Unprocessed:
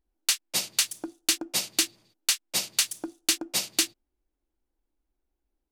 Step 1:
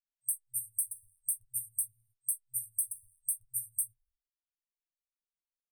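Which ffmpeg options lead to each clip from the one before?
-af "agate=range=-33dB:threshold=-57dB:ratio=3:detection=peak,afftfilt=real='re*(1-between(b*sr/4096,120,8300))':imag='im*(1-between(b*sr/4096,120,8300))':win_size=4096:overlap=0.75,flanger=delay=7.3:depth=5.5:regen=-38:speed=0.48:shape=sinusoidal,volume=2.5dB"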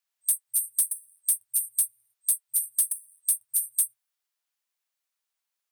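-af "highpass=710,acontrast=70,asoftclip=type=tanh:threshold=-19dB,volume=4.5dB"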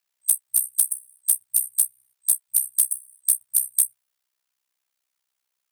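-af "tremolo=f=64:d=0.889,volume=8.5dB"

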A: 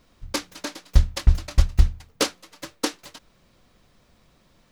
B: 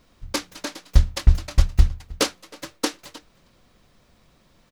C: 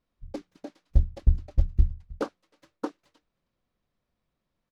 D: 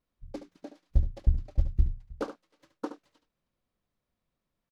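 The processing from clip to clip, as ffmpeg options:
-filter_complex "[0:a]asplit=2[a][b];[b]adelay=314.9,volume=-22dB,highshelf=f=4k:g=-7.08[c];[a][c]amix=inputs=2:normalize=0,volume=1dB"
-af "afwtdn=0.0398,aemphasis=mode=reproduction:type=cd,volume=-6dB"
-af "aecho=1:1:72:0.299,volume=-3.5dB"

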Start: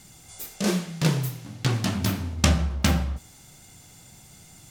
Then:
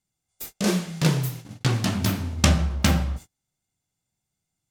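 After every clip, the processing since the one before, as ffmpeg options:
-af "agate=range=-34dB:threshold=-38dB:ratio=16:detection=peak,volume=1.5dB"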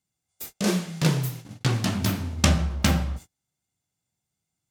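-af "highpass=50,volume=-1dB"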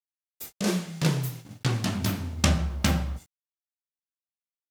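-af "acrusher=bits=9:mix=0:aa=0.000001,volume=-2.5dB"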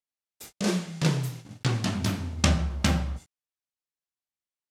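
-af "lowpass=9.8k"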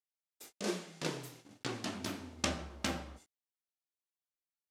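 -af "lowshelf=f=210:t=q:w=1.5:g=-10.5,volume=-8.5dB"

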